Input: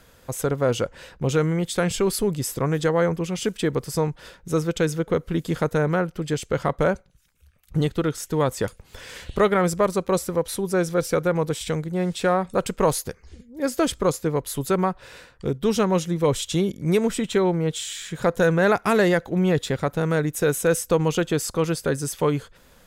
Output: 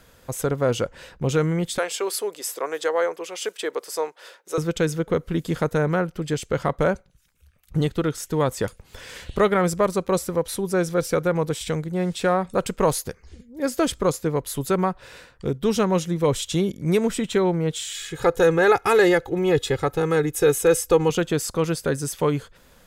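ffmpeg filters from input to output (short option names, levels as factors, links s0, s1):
-filter_complex "[0:a]asettb=1/sr,asplit=3[s0][s1][s2];[s0]atrim=end=1.784[s3];[s1]atrim=start=1.78:end=4.58,asetpts=PTS-STARTPTS,afade=t=in:d=0.004:c=qsin,afade=t=out:st=2.796:d=0.004:c=qsin,highpass=f=420:w=0.5412,highpass=f=420:w=1.3066[s4];[s2]atrim=start=4.576[s5];[s3][s4]acrossfade=d=0.004:c1=hsin:c2=qsin[s6];[s6][s5]acrossfade=d=0.004:c1=qsin:c2=hsin,asettb=1/sr,asplit=3[s7][s8][s9];[s7]atrim=end=17.944[s10];[s8]atrim=start=17.94:end=21.1,asetpts=PTS-STARTPTS,afade=t=in:d=0.004:c=qsin,afade=t=out:st=3.156:d=0.004:c=qsin,aecho=1:1:2.4:0.75,atrim=end_sample=139356[s11];[s9]atrim=start=21.096[s12];[s10][s11]acrossfade=d=0.004:c1=hsin:c2=qsin[s13];[s13][s12]acrossfade=d=0.004:c1=qsin:c2=hsin"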